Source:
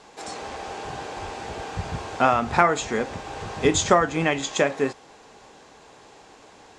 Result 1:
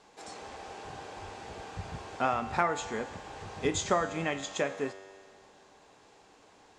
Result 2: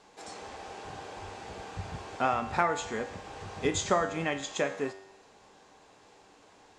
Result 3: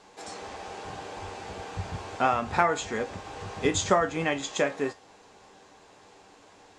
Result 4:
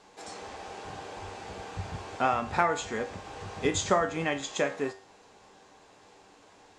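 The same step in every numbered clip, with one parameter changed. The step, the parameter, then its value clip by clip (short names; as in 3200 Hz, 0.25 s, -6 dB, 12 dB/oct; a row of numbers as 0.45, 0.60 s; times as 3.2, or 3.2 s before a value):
resonator, decay: 2.1, 0.89, 0.18, 0.41 s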